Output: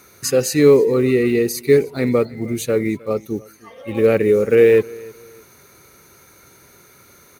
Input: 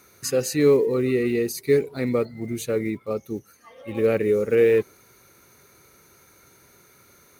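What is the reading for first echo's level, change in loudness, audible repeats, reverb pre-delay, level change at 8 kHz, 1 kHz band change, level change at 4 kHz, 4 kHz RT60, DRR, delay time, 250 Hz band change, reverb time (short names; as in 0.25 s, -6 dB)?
-23.0 dB, +6.0 dB, 2, none, +6.0 dB, +6.0 dB, +6.0 dB, none, none, 0.31 s, +6.0 dB, none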